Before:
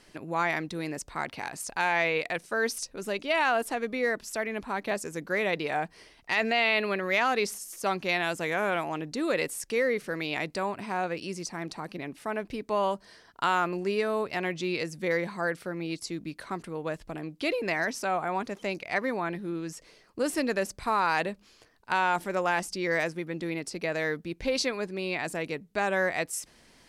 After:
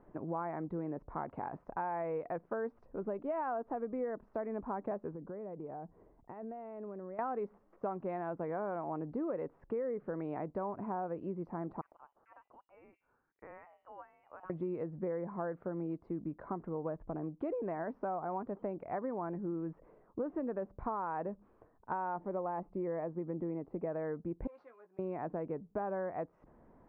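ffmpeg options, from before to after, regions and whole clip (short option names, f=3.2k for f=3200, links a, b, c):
-filter_complex "[0:a]asettb=1/sr,asplit=3[a][b][c];[a]atrim=end=5.144[d];[b]atrim=start=5.14:end=7.19,asetpts=PTS-STARTPTS,afade=t=in:d=0.004:c=qsin,afade=t=out:st=2.046:d=0.004:c=qsin,equalizer=f=2.6k:w=0.32:g=-11,acompressor=threshold=-40dB:ratio=6:attack=3.2:release=140:knee=1:detection=peak[e];[c]atrim=start=7.186[f];[d][e]acrossfade=d=0.004:c1=hsin:c2=qsin[g];[g][f]acrossfade=d=0.004:c1=qsin:c2=hsin,asettb=1/sr,asplit=3[h][i][j];[h]atrim=end=11.814[k];[i]atrim=start=11.81:end=14.5,asetpts=PTS-STARTPTS,afade=t=in:d=0.004:c=qsin,afade=t=out:st=2.686:d=0.004:c=qsin,aderivative,bandreject=f=48.3:t=h:w=4,bandreject=f=96.6:t=h:w=4,bandreject=f=144.9:t=h:w=4,bandreject=f=193.2:t=h:w=4,bandreject=f=241.5:t=h:w=4,bandreject=f=289.8:t=h:w=4,bandreject=f=338.1:t=h:w=4,bandreject=f=386.4:t=h:w=4,bandreject=f=434.7:t=h:w=4,bandreject=f=483:t=h:w=4,bandreject=f=531.3:t=h:w=4,bandreject=f=579.6:t=h:w=4,bandreject=f=627.9:t=h:w=4,bandreject=f=676.2:t=h:w=4,bandreject=f=724.5:t=h:w=4,bandreject=f=772.8:t=h:w=4,bandreject=f=821.1:t=h:w=4,bandreject=f=869.4:t=h:w=4,bandreject=f=917.7:t=h:w=4,bandreject=f=966:t=h:w=4,bandreject=f=1.0143k:t=h:w=4,bandreject=f=1.0626k:t=h:w=4,bandreject=f=1.1109k:t=h:w=4,bandreject=f=1.1592k:t=h:w=4,bandreject=f=1.2075k:t=h:w=4,bandreject=f=1.2558k:t=h:w=4,bandreject=f=1.3041k:t=h:w=4,bandreject=f=1.3524k:t=h:w=4,bandreject=f=1.4007k:t=h:w=4,bandreject=f=1.449k:t=h:w=4,lowpass=f=2.8k:t=q:w=0.5098,lowpass=f=2.8k:t=q:w=0.6013,lowpass=f=2.8k:t=q:w=0.9,lowpass=f=2.8k:t=q:w=2.563,afreqshift=-3300[l];[j]atrim=start=14.496[m];[k][l]acrossfade=d=0.004:c1=hsin:c2=qsin[n];[n][m]acrossfade=d=0.004:c1=qsin:c2=hsin,asettb=1/sr,asplit=3[o][p][q];[o]atrim=end=22.204[r];[p]atrim=start=22.2:end=23.87,asetpts=PTS-STARTPTS,afade=t=in:d=0.004:c=qsin,afade=t=out:st=1.666:d=0.004:c=qsin,lowpass=2.7k,equalizer=f=1.5k:w=4.2:g=-7.5[s];[q]atrim=start=23.866[t];[r][s]acrossfade=d=0.004:c1=hsin:c2=qsin[u];[u][t]acrossfade=d=0.004:c1=qsin:c2=hsin,asettb=1/sr,asplit=3[v][w][x];[v]atrim=end=24.474[y];[w]atrim=start=24.47:end=24.99,asetpts=PTS-STARTPTS,afade=t=in:d=0.004:c=qsin,afade=t=out:st=0.516:d=0.004:c=qsin,aeval=exprs='if(lt(val(0),0),0.447*val(0),val(0))':c=same,aderivative,asplit=2[z][aa];[aa]adelay=17,volume=-8dB[ab];[z][ab]amix=inputs=2:normalize=0,atrim=end_sample=22932[ac];[x]atrim=start=24.986[ad];[y][ac]acrossfade=d=0.004:c1=hsin:c2=qsin[ae];[ae][ad]acrossfade=d=0.004:c1=qsin:c2=hsin,lowpass=f=1.1k:w=0.5412,lowpass=f=1.1k:w=1.3066,acompressor=threshold=-34dB:ratio=6"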